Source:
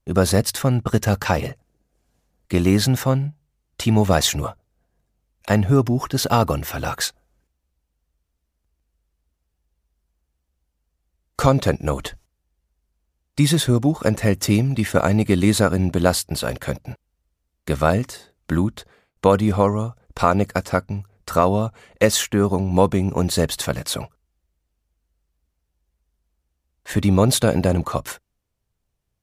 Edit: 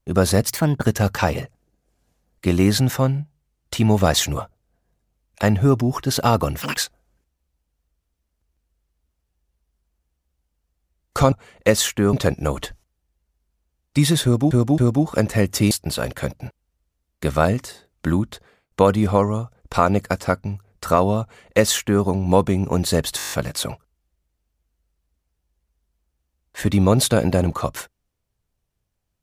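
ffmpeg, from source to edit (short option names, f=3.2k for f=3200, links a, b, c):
-filter_complex "[0:a]asplit=17[a][b][c][d][e][f][g][h][i][j][k][l][m][n][o][p][q];[a]atrim=end=0.484[r];[b]atrim=start=0.48:end=0.92,asetpts=PTS-STARTPTS,asetrate=52479,aresample=44100[s];[c]atrim=start=0.916:end=6.674[t];[d]atrim=start=6.67:end=7,asetpts=PTS-STARTPTS,asetrate=85554,aresample=44100[u];[e]atrim=start=6.996:end=11.552[v];[f]atrim=start=21.668:end=22.482[w];[g]atrim=start=11.548:end=13.932[x];[h]atrim=start=13.658:end=13.932[y];[i]atrim=start=13.658:end=14.592[z];[j]atrim=start=16.158:end=23.642[aa];[k]atrim=start=23.618:end=23.642[ab];[l]atrim=start=23.618:end=23.642[ac];[m]atrim=start=23.618:end=23.642[ad];[n]atrim=start=23.618:end=23.642[ae];[o]atrim=start=23.618:end=23.642[af];[p]atrim=start=23.618:end=23.642[ag];[q]atrim=start=23.618[ah];[r][s]acrossfade=d=0.004:c1=hsin:c2=hsin[ai];[ai][t]acrossfade=d=0.004:c1=hsin:c2=hsin[aj];[aj][u]acrossfade=d=0.004:c1=hsin:c2=hsin[ak];[ak][v]acrossfade=d=0.004:c1=hsin:c2=hsin[al];[al][w]acrossfade=d=0.004:c1=hsin:c2=hsin[am];[am][x]acrossfade=d=0.004:c1=hsin:c2=hsin[an];[an][y]acrossfade=d=0.004:c1=hsin:c2=hsin[ao];[ao][z]acrossfade=d=0.004:c1=hsin:c2=hsin[ap];[ap][aa]acrossfade=d=0.004:c1=hsin:c2=hsin[aq];[aq][ab]acrossfade=d=0.004:c1=hsin:c2=hsin[ar];[ar][ac]acrossfade=d=0.004:c1=hsin:c2=hsin[as];[as][ad]acrossfade=d=0.004:c1=hsin:c2=hsin[at];[at][ae]acrossfade=d=0.004:c1=hsin:c2=hsin[au];[au][af]acrossfade=d=0.004:c1=hsin:c2=hsin[av];[av][ag]acrossfade=d=0.004:c1=hsin:c2=hsin[aw];[aw][ah]acrossfade=d=0.004:c1=hsin:c2=hsin"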